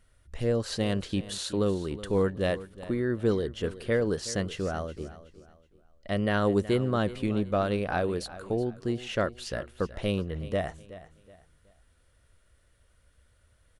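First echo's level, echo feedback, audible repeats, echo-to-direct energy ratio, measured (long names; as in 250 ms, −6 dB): −16.0 dB, 32%, 2, −15.5 dB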